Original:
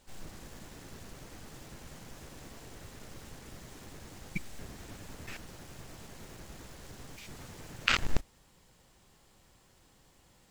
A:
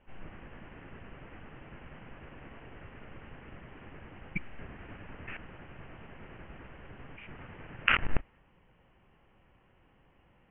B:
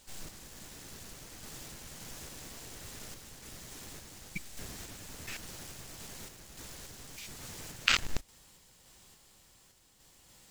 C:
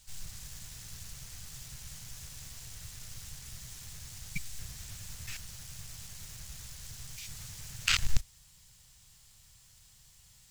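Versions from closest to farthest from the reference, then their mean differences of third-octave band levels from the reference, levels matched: B, C, A; 3.5, 8.0, 10.5 dB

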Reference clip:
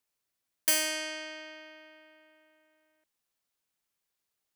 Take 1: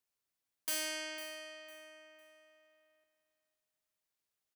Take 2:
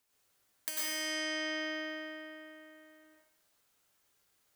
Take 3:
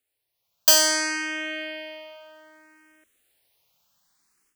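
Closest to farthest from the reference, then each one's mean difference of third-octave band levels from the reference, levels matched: 3, 1, 2; 3.0, 5.0, 8.5 dB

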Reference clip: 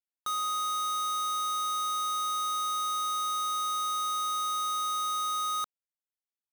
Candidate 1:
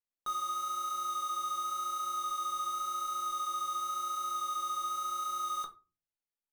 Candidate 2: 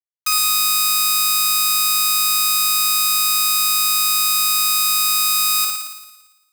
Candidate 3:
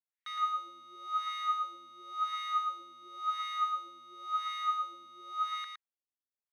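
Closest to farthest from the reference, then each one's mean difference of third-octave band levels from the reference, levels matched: 1, 2, 3; 3.0, 7.0, 10.5 dB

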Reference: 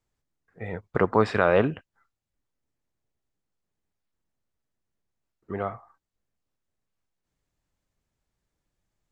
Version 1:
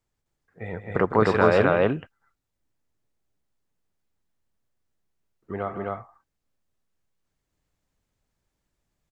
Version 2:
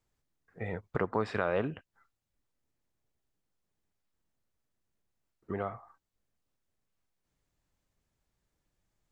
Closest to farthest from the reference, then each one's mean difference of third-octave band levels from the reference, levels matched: 2, 1; 2.5, 4.5 dB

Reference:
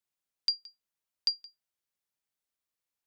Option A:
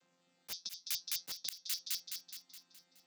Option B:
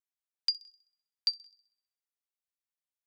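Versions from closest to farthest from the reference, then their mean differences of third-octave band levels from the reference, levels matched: B, A; 2.0, 14.5 dB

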